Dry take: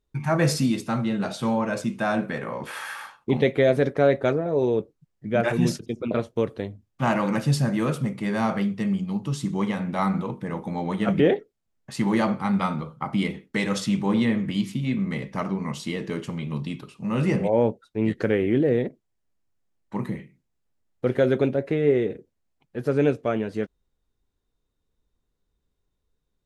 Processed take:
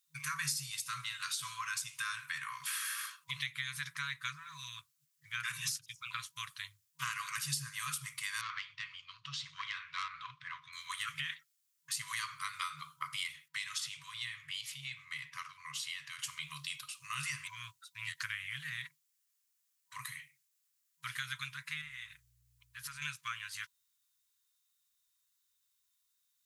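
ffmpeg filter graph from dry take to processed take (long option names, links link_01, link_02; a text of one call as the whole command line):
ffmpeg -i in.wav -filter_complex "[0:a]asettb=1/sr,asplit=3[link_01][link_02][link_03];[link_01]atrim=end=8.414[link_04];[link_02]atrim=start=8.41:end=10.73,asetpts=PTS-STARTPTS,afade=type=in:duration=0.004:curve=qsin,afade=type=out:start_time=2.316:duration=0.004:curve=qsin,lowpass=frequency=4200:width=0.5412,lowpass=frequency=4200:width=1.3066,aeval=exprs='(tanh(8.91*val(0)+0.35)-tanh(0.35))/8.91':channel_layout=same[link_05];[link_03]atrim=start=10.726[link_06];[link_04][link_05]acrossfade=duration=0.004:curve1=hsin:curve2=qsin[link_07];[link_07][link_06]acrossfade=duration=0.004:curve1=qsin:curve2=hsin,asettb=1/sr,asplit=3[link_08][link_09][link_10];[link_08]atrim=end=13.484[link_11];[link_09]atrim=start=13.48:end=16.19,asetpts=PTS-STARTPTS,afade=type=in:duration=0.004:curve=qsin,afade=type=out:start_time=2.706:duration=0.004:curve=qsin,bass=frequency=250:gain=-1,treble=frequency=4000:gain=-12,acrossover=split=140|3000[link_12][link_13][link_14];[link_13]acompressor=threshold=-35dB:ratio=3:attack=3.2:release=140:knee=2.83:detection=peak[link_15];[link_12][link_15][link_14]amix=inputs=3:normalize=0[link_16];[link_10]atrim=start=16.186[link_17];[link_11][link_16]acrossfade=duration=0.004:curve1=hsin:curve2=qsin[link_18];[link_18][link_17]acrossfade=duration=0.004:curve1=qsin:curve2=hsin,asettb=1/sr,asplit=3[link_19][link_20][link_21];[link_19]atrim=end=21.814[link_22];[link_20]atrim=start=21.81:end=23.02,asetpts=PTS-STARTPTS,afade=type=in:duration=0.004:curve=qsin,afade=type=out:start_time=1.206:duration=0.004:curve=qsin,acompressor=threshold=-28dB:ratio=3:attack=3.2:release=140:knee=1:detection=peak,aeval=exprs='val(0)+0.00794*(sin(2*PI*60*n/s)+sin(2*PI*2*60*n/s)/2+sin(2*PI*3*60*n/s)/3+sin(2*PI*4*60*n/s)/4+sin(2*PI*5*60*n/s)/5)':channel_layout=same[link_23];[link_21]atrim=start=23.016[link_24];[link_22][link_23]acrossfade=duration=0.004:curve1=hsin:curve2=qsin[link_25];[link_25][link_24]acrossfade=duration=0.004:curve1=qsin:curve2=hsin,afftfilt=real='re*(1-between(b*sr/4096,160,970))':imag='im*(1-between(b*sr/4096,160,970))':win_size=4096:overlap=0.75,aderivative,acrossover=split=370[link_26][link_27];[link_27]acompressor=threshold=-47dB:ratio=5[link_28];[link_26][link_28]amix=inputs=2:normalize=0,volume=11.5dB" out.wav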